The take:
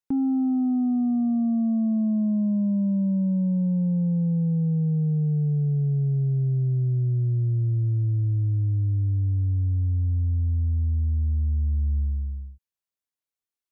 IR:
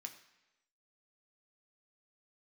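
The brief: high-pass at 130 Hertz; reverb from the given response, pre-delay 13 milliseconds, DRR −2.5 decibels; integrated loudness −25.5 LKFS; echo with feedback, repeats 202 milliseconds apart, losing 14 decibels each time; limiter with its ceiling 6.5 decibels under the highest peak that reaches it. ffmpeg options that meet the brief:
-filter_complex "[0:a]highpass=130,alimiter=level_in=1.5dB:limit=-24dB:level=0:latency=1,volume=-1.5dB,aecho=1:1:202|404:0.2|0.0399,asplit=2[link_01][link_02];[1:a]atrim=start_sample=2205,adelay=13[link_03];[link_02][link_03]afir=irnorm=-1:irlink=0,volume=7dB[link_04];[link_01][link_04]amix=inputs=2:normalize=0,volume=2dB"

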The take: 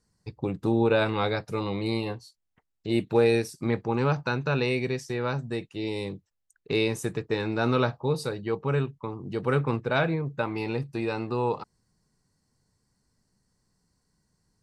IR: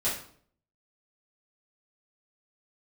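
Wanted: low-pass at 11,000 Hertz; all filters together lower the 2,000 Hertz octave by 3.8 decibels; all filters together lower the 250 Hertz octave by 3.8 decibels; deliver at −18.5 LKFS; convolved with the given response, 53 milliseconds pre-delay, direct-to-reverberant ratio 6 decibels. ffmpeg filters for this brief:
-filter_complex "[0:a]lowpass=11000,equalizer=frequency=250:width_type=o:gain=-5.5,equalizer=frequency=2000:width_type=o:gain=-5.5,asplit=2[link_01][link_02];[1:a]atrim=start_sample=2205,adelay=53[link_03];[link_02][link_03]afir=irnorm=-1:irlink=0,volume=-14dB[link_04];[link_01][link_04]amix=inputs=2:normalize=0,volume=10dB"

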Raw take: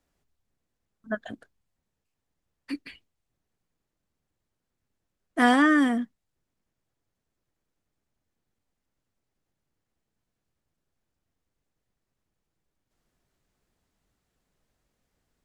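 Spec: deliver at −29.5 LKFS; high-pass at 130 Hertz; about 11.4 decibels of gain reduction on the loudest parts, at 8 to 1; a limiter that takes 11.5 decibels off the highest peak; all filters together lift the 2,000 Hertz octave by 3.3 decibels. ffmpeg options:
ffmpeg -i in.wav -af "highpass=130,equalizer=frequency=2000:width_type=o:gain=4,acompressor=threshold=-27dB:ratio=8,volume=8.5dB,alimiter=limit=-18.5dB:level=0:latency=1" out.wav

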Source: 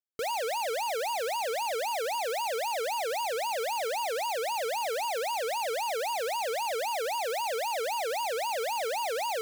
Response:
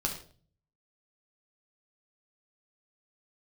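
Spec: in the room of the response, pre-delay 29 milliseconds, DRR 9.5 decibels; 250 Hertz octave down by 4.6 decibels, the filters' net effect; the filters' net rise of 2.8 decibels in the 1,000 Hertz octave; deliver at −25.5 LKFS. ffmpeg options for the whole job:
-filter_complex "[0:a]equalizer=frequency=250:width_type=o:gain=-9,equalizer=frequency=1000:width_type=o:gain=4,asplit=2[link_01][link_02];[1:a]atrim=start_sample=2205,adelay=29[link_03];[link_02][link_03]afir=irnorm=-1:irlink=0,volume=-14dB[link_04];[link_01][link_04]amix=inputs=2:normalize=0,volume=3.5dB"

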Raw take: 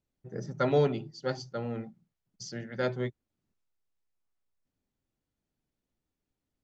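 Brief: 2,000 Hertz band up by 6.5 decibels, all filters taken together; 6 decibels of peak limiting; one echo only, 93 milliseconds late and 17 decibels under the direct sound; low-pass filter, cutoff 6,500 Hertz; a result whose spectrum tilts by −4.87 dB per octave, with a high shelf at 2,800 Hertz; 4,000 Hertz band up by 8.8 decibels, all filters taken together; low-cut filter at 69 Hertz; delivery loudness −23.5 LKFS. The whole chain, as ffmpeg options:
ffmpeg -i in.wav -af "highpass=69,lowpass=6500,equalizer=frequency=2000:width_type=o:gain=5.5,highshelf=frequency=2800:gain=5,equalizer=frequency=4000:width_type=o:gain=6,alimiter=limit=-19.5dB:level=0:latency=1,aecho=1:1:93:0.141,volume=10.5dB" out.wav

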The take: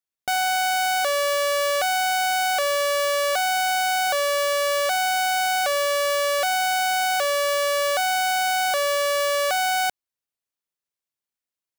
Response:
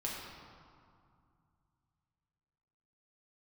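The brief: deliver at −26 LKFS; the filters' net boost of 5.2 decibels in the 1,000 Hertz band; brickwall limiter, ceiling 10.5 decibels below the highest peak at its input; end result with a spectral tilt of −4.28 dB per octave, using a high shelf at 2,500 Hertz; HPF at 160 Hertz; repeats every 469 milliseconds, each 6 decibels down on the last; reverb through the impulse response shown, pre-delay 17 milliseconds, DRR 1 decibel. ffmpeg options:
-filter_complex "[0:a]highpass=160,equalizer=frequency=1000:width_type=o:gain=7,highshelf=frequency=2500:gain=7,alimiter=limit=-17dB:level=0:latency=1,aecho=1:1:469|938|1407|1876|2345|2814:0.501|0.251|0.125|0.0626|0.0313|0.0157,asplit=2[link_01][link_02];[1:a]atrim=start_sample=2205,adelay=17[link_03];[link_02][link_03]afir=irnorm=-1:irlink=0,volume=-3.5dB[link_04];[link_01][link_04]amix=inputs=2:normalize=0,volume=-1.5dB"

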